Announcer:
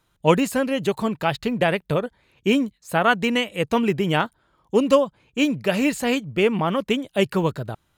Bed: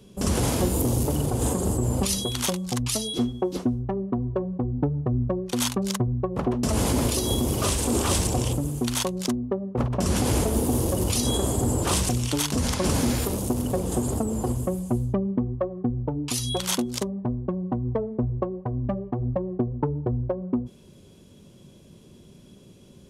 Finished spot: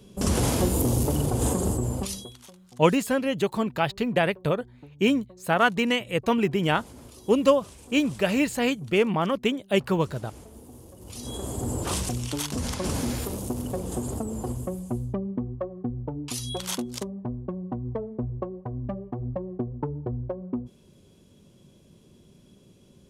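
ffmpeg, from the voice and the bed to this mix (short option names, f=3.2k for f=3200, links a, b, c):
-filter_complex "[0:a]adelay=2550,volume=-2.5dB[a];[1:a]volume=18.5dB,afade=t=out:st=1.61:d=0.77:silence=0.0668344,afade=t=in:st=11:d=0.75:silence=0.11885[b];[a][b]amix=inputs=2:normalize=0"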